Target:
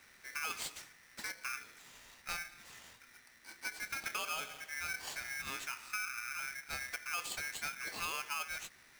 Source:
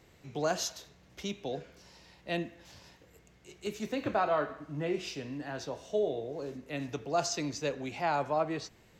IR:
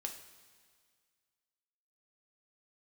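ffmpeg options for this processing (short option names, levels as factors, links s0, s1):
-af "acompressor=threshold=0.0141:ratio=5,equalizer=f=170:w=1.9:g=-5,aeval=exprs='val(0)*sgn(sin(2*PI*1900*n/s))':c=same"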